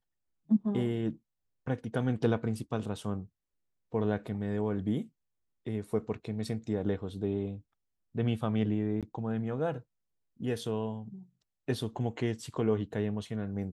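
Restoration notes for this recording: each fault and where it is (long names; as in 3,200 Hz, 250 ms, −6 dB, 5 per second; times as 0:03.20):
0:09.01–0:09.03: drop-out 17 ms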